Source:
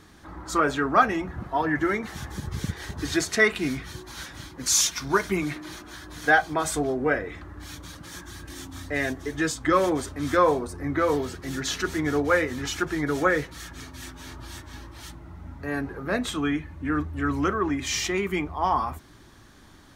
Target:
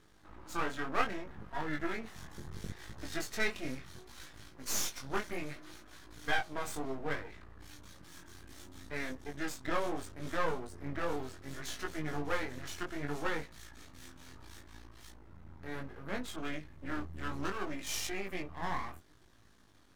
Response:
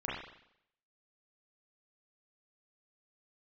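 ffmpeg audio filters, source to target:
-filter_complex "[0:a]aeval=exprs='max(val(0),0)':c=same,flanger=delay=18.5:depth=4.9:speed=0.67,asettb=1/sr,asplit=3[a][b][c];[a]atrim=end=16.364[d];[b]atrim=start=16.36:end=18.1,asetpts=PTS-STARTPTS,afade=t=in:d=0.004:c=qsin,afade=t=out:st=1.736:d=0.004:c=qsin,adynamicequalizer=threshold=0.00447:dfrequency=3000:dqfactor=0.7:tfrequency=3000:tqfactor=0.7:attack=5:release=100:ratio=0.375:range=2.5:mode=boostabove:tftype=highshelf[e];[c]atrim=start=18.096[f];[d][e]acrossfade=d=0.004:c1=hsin:c2=qsin[g];[g][f]acrossfade=d=0.004:c1=qsin:c2=hsin,volume=-6dB"

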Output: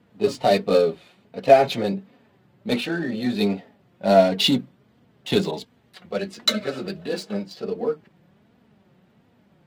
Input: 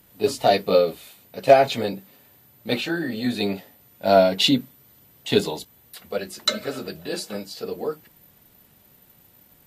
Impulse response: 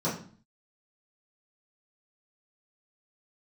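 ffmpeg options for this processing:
-filter_complex "[0:a]highpass=100,lowshelf=f=380:g=5.5,asplit=2[a][b];[b]asoftclip=type=hard:threshold=-18dB,volume=-10dB[c];[a][c]amix=inputs=2:normalize=0,adynamicsmooth=sensitivity=4.5:basefreq=2.9k,flanger=delay=4:depth=1.8:regen=46:speed=1.4:shape=triangular,asettb=1/sr,asplit=3[d][e][f];[d]atrim=end=5.514[g];[e]atrim=start=5.51:end=7.08,asetpts=PTS-STARTPTS,afade=t=in:d=0.004:c=qsin,afade=t=out:st=1.566:d=0.004:c=qsin,adynamicequalizer=threshold=0.00708:dfrequency=1600:dqfactor=0.7:tfrequency=1600:tqfactor=0.7:attack=5:release=100:ratio=0.375:range=2:mode=boostabove:tftype=highshelf[h];[f]atrim=start=7.076[i];[g][h]acrossfade=d=0.004:c1=hsin:c2=qsin[j];[j][i]acrossfade=d=0.004:c1=qsin:c2=hsin,volume=1dB"

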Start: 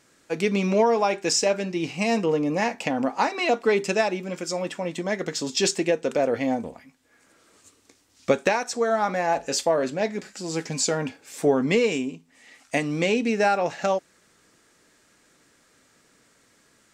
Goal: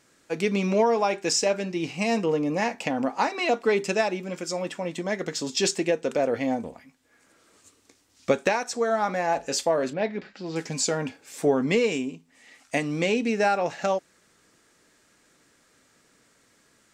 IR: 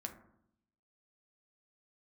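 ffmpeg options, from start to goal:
-filter_complex "[0:a]asettb=1/sr,asplit=3[a][b][c];[a]atrim=end=9.934[d];[b]atrim=start=9.93:end=10.56,asetpts=PTS-STARTPTS,afade=t=in:d=0.004:c=qsin,afade=t=out:st=0.626:d=0.004:c=qsin,lowpass=f=4k:w=0.5412,lowpass=f=4k:w=1.3066[e];[c]atrim=start=10.556[f];[d][e]acrossfade=d=0.004:c1=hsin:c2=qsin[g];[g][f]acrossfade=d=0.004:c1=qsin:c2=hsin,volume=-1.5dB"

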